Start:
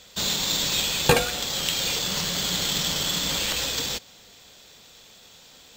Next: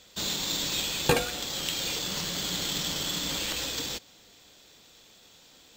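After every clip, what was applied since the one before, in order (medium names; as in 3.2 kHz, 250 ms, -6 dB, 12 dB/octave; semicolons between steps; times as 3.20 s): peaking EQ 310 Hz +6.5 dB 0.43 oct; trim -5.5 dB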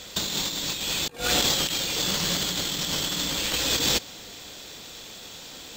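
compressor with a negative ratio -35 dBFS, ratio -0.5; trim +9 dB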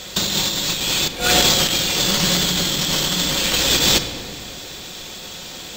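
simulated room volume 3100 m³, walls mixed, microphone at 1 m; trim +7 dB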